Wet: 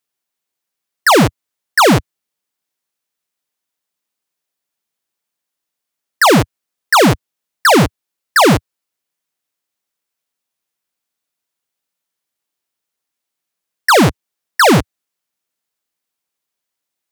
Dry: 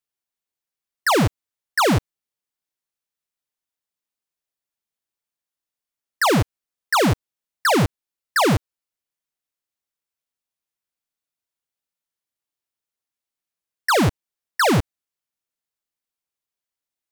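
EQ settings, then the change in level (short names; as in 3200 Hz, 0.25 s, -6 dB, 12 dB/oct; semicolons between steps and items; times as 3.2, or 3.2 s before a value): HPF 62 Hz; bell 94 Hz -8.5 dB 0.62 oct; +8.5 dB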